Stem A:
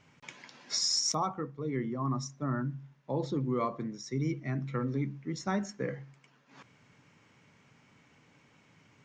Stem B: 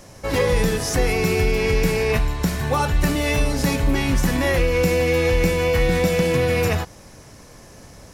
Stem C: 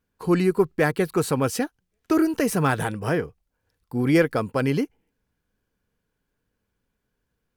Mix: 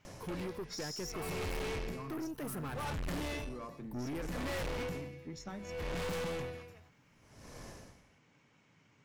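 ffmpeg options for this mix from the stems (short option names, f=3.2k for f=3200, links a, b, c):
-filter_complex "[0:a]acompressor=threshold=-35dB:ratio=6,volume=-4.5dB[a];[1:a]highshelf=f=7.2k:g=-5.5,aeval=exprs='val(0)*pow(10,-35*(0.5-0.5*cos(2*PI*0.66*n/s))/20)':c=same,adelay=50,volume=-3dB[b];[2:a]highshelf=f=8.1k:g=10.5,alimiter=limit=-17.5dB:level=0:latency=1:release=273,equalizer=f=6.1k:w=0.98:g=-8.5,volume=-9dB[c];[a][b][c]amix=inputs=3:normalize=0,aeval=exprs='(tanh(63.1*val(0)+0.25)-tanh(0.25))/63.1':c=same"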